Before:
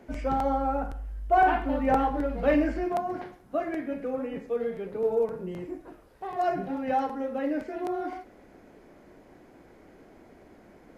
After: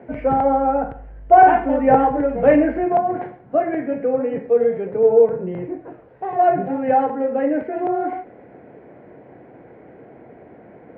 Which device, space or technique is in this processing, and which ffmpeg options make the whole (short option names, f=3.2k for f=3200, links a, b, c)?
bass cabinet: -af "highpass=f=63:w=0.5412,highpass=f=63:w=1.3066,equalizer=f=67:t=q:w=4:g=-9,equalizer=f=130:t=q:w=4:g=8,equalizer=f=480:t=q:w=4:g=6,equalizer=f=710:t=q:w=4:g=4,equalizer=f=1.2k:t=q:w=4:g=-5,lowpass=f=2.3k:w=0.5412,lowpass=f=2.3k:w=1.3066,volume=7.5dB"